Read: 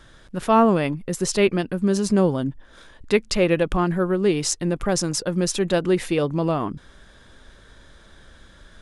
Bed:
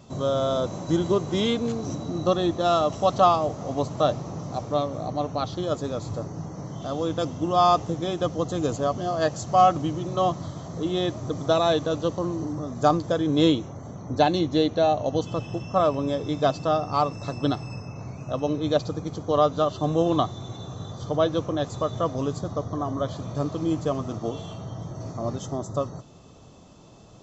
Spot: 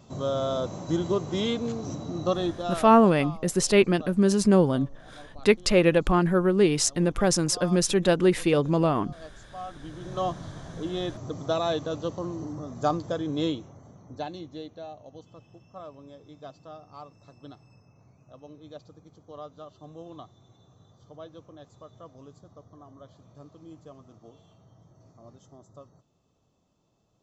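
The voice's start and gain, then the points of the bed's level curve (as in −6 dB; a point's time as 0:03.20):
2.35 s, −0.5 dB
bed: 0:02.44 −3.5 dB
0:03.14 −21.5 dB
0:09.67 −21.5 dB
0:10.15 −5.5 dB
0:13.13 −5.5 dB
0:15.02 −21.5 dB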